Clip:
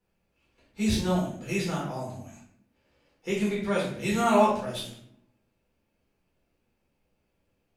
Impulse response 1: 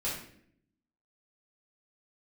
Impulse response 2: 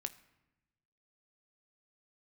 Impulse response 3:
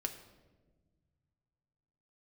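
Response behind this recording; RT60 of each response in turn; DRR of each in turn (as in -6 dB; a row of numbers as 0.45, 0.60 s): 1; 0.65, 0.95, 1.4 s; -7.5, 9.5, 3.5 dB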